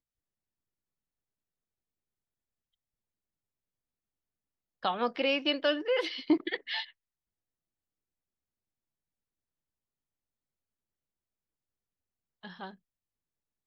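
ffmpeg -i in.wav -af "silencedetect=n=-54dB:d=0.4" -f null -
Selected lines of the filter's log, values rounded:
silence_start: 0.00
silence_end: 4.83 | silence_duration: 4.83
silence_start: 6.91
silence_end: 12.43 | silence_duration: 5.52
silence_start: 12.75
silence_end: 13.67 | silence_duration: 0.91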